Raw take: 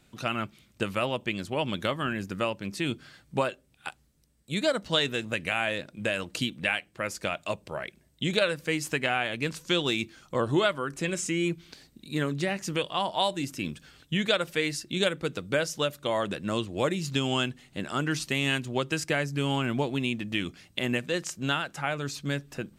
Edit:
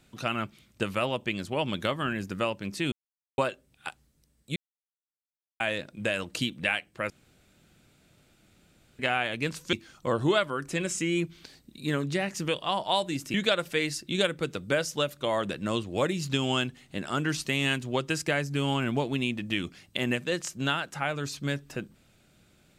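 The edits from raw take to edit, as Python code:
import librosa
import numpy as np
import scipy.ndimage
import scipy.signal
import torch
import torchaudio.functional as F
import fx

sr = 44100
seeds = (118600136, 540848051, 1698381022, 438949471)

y = fx.edit(x, sr, fx.silence(start_s=2.92, length_s=0.46),
    fx.silence(start_s=4.56, length_s=1.04),
    fx.room_tone_fill(start_s=7.1, length_s=1.89),
    fx.cut(start_s=9.73, length_s=0.28),
    fx.cut(start_s=13.62, length_s=0.54), tone=tone)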